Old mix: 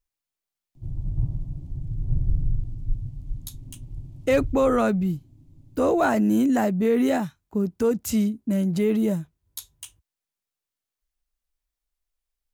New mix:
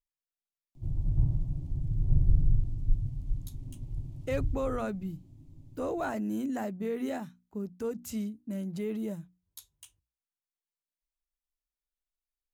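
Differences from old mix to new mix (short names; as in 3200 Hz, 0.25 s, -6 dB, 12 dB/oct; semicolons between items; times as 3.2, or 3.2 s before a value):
speech -12.0 dB; master: add notches 60/120/180/240/300 Hz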